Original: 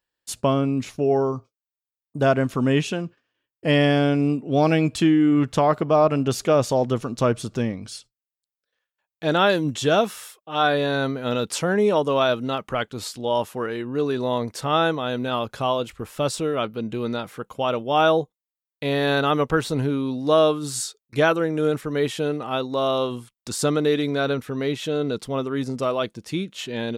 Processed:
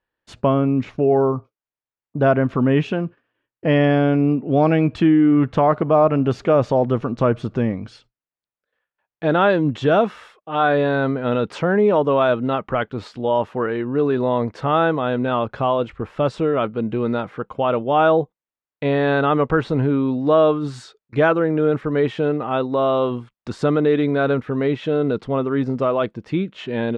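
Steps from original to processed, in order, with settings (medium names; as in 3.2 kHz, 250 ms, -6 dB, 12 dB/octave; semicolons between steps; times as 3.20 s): low-pass 2 kHz 12 dB/octave; in parallel at -1 dB: peak limiter -17.5 dBFS, peak gain reduction 10.5 dB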